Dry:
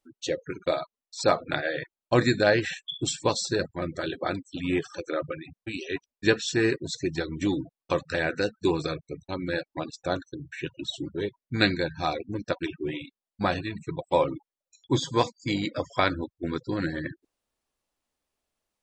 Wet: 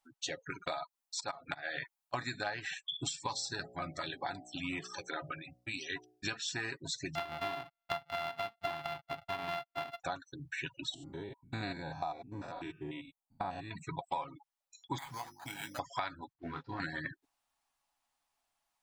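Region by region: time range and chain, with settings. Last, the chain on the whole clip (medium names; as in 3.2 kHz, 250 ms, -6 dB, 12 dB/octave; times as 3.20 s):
0.67–2.14 s: slow attack 261 ms + treble shelf 7 kHz +7 dB
3.13–6.34 s: peaking EQ 5.2 kHz +4 dB 0.26 oct + de-hum 61.03 Hz, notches 13 + Shepard-style phaser falling 1.2 Hz
7.15–10.00 s: sorted samples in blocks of 64 samples + resonant high shelf 5.1 kHz -12 dB, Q 1.5
10.94–13.71 s: spectrogram pixelated in time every 100 ms + high-order bell 2.7 kHz -9 dB 2.6 oct
14.98–15.79 s: hum notches 50/100/150/200/250/300/350 Hz + compression 10:1, threshold -36 dBFS + careless resampling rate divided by 8×, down none, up hold
16.33–16.80 s: CVSD coder 64 kbps + distance through air 320 m + detune thickener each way 48 cents
whole clip: resonant low shelf 620 Hz -7.5 dB, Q 3; comb 7.2 ms, depth 32%; compression 6:1, threshold -35 dBFS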